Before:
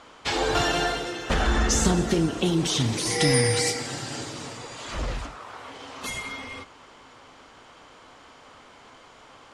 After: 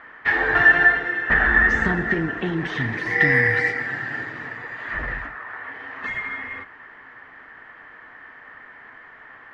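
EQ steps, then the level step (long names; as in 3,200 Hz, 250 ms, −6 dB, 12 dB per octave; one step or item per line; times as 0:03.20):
low-pass with resonance 1,800 Hz, resonance Q 15
parametric band 61 Hz −3.5 dB
notch filter 540 Hz, Q 12
−2.0 dB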